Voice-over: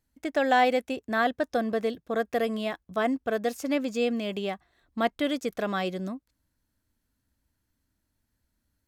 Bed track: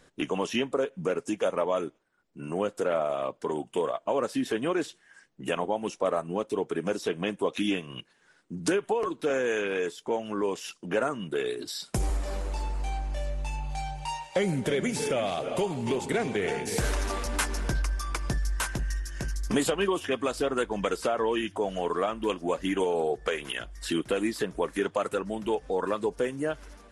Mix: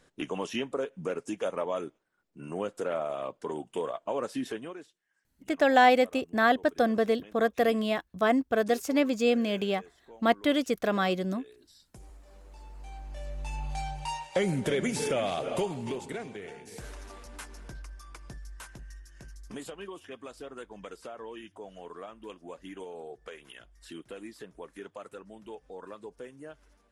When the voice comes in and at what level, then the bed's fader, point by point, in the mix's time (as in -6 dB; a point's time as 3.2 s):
5.25 s, +2.0 dB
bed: 4.47 s -4.5 dB
4.93 s -22.5 dB
12.25 s -22.5 dB
13.64 s -1 dB
15.55 s -1 dB
16.55 s -15.5 dB